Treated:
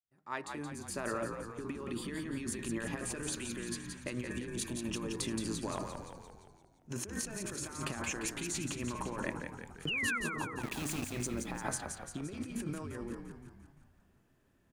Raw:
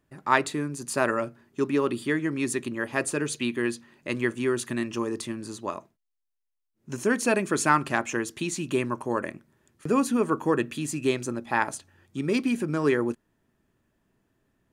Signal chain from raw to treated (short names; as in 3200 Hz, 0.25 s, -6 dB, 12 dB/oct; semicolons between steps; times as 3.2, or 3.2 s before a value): opening faded in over 2.45 s; 4.31–4.84 spectral repair 1100–2700 Hz after; de-hum 154 Hz, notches 14; negative-ratio compressor -34 dBFS, ratio -1; 5.67–6.91 transient shaper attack -9 dB, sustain +11 dB; 9.87–10.18 painted sound fall 1300–3100 Hz -28 dBFS; 10.61–11.12 sample gate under -31 dBFS; frequency-shifting echo 0.173 s, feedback 57%, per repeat -53 Hz, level -6 dB; gain -6.5 dB